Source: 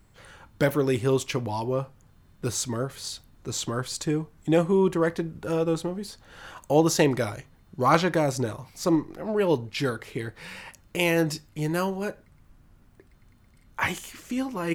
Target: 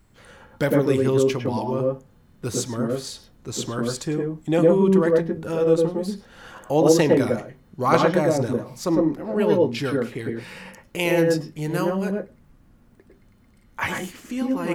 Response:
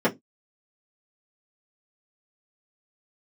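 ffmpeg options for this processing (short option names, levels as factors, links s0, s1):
-filter_complex "[0:a]asplit=2[s0][s1];[1:a]atrim=start_sample=2205,adelay=100[s2];[s1][s2]afir=irnorm=-1:irlink=0,volume=0.119[s3];[s0][s3]amix=inputs=2:normalize=0"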